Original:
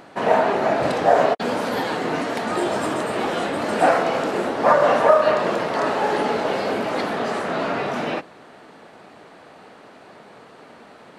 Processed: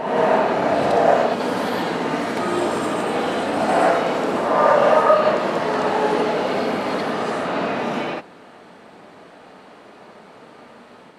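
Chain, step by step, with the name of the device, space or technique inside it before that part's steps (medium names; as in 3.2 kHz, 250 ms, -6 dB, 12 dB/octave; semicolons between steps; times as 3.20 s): reverse reverb (reverse; reverberation RT60 1.1 s, pre-delay 58 ms, DRR -0.5 dB; reverse); trim -2.5 dB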